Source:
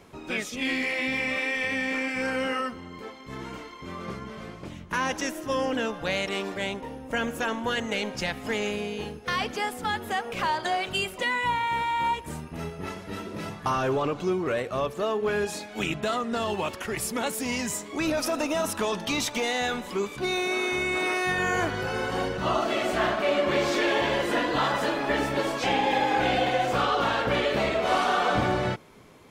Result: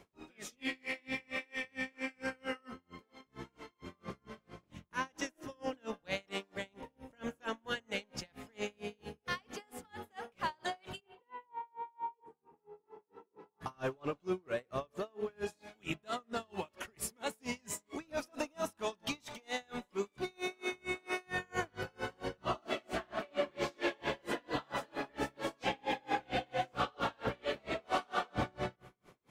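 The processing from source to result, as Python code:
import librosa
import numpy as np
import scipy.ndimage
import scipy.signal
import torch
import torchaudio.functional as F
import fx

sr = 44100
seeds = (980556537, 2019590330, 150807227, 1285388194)

y = fx.double_bandpass(x, sr, hz=620.0, octaves=0.94, at=(10.99, 13.6), fade=0.02)
y = fx.rev_spring(y, sr, rt60_s=1.5, pass_ms=(31, 49), chirp_ms=45, drr_db=18.5)
y = y * 10.0 ** (-35 * (0.5 - 0.5 * np.cos(2.0 * np.pi * 4.4 * np.arange(len(y)) / sr)) / 20.0)
y = y * 10.0 ** (-6.0 / 20.0)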